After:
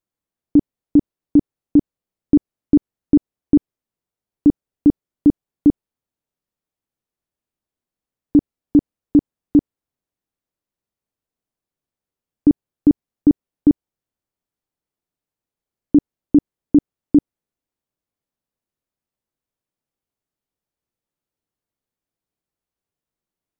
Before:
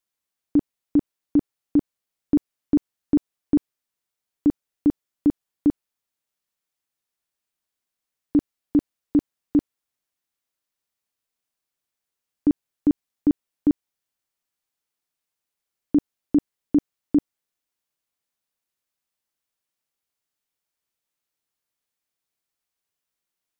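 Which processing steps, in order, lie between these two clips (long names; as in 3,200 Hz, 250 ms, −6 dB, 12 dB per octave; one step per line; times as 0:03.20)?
tilt shelving filter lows +8 dB, about 850 Hz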